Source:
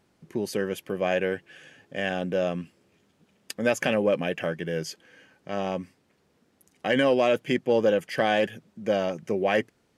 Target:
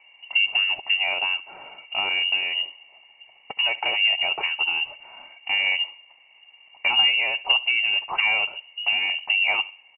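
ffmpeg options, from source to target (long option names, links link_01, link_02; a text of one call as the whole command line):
ffmpeg -i in.wav -filter_complex "[0:a]acompressor=threshold=-29dB:ratio=5,asplit=3[link_01][link_02][link_03];[link_01]bandpass=frequency=300:width_type=q:width=8,volume=0dB[link_04];[link_02]bandpass=frequency=870:width_type=q:width=8,volume=-6dB[link_05];[link_03]bandpass=frequency=2240:width_type=q:width=8,volume=-9dB[link_06];[link_04][link_05][link_06]amix=inputs=3:normalize=0,asplit=2[link_07][link_08];[link_08]highpass=frequency=720:poles=1,volume=30dB,asoftclip=type=tanh:threshold=-12.5dB[link_09];[link_07][link_09]amix=inputs=2:normalize=0,lowpass=frequency=1400:poles=1,volume=-6dB,asplit=2[link_10][link_11];[link_11]adelay=69,lowpass=frequency=1700:poles=1,volume=-16.5dB,asplit=2[link_12][link_13];[link_13]adelay=69,lowpass=frequency=1700:poles=1,volume=0.41,asplit=2[link_14][link_15];[link_15]adelay=69,lowpass=frequency=1700:poles=1,volume=0.41,asplit=2[link_16][link_17];[link_17]adelay=69,lowpass=frequency=1700:poles=1,volume=0.41[link_18];[link_12][link_14][link_16][link_18]amix=inputs=4:normalize=0[link_19];[link_10][link_19]amix=inputs=2:normalize=0,lowpass=frequency=2600:width_type=q:width=0.5098,lowpass=frequency=2600:width_type=q:width=0.6013,lowpass=frequency=2600:width_type=q:width=0.9,lowpass=frequency=2600:width_type=q:width=2.563,afreqshift=-3100,volume=8dB" out.wav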